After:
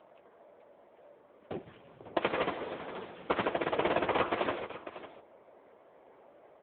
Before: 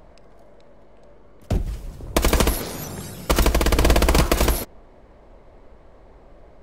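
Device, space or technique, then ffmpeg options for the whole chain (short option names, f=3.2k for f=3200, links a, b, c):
satellite phone: -filter_complex "[0:a]asplit=3[a][b][c];[a]afade=t=out:st=1.61:d=0.02[d];[b]asubboost=boost=4.5:cutoff=130,afade=t=in:st=1.61:d=0.02,afade=t=out:st=2.06:d=0.02[e];[c]afade=t=in:st=2.06:d=0.02[f];[d][e][f]amix=inputs=3:normalize=0,highpass=360,lowpass=3.1k,aecho=1:1:550:0.188,volume=-3dB" -ar 8000 -c:a libopencore_amrnb -b:a 6700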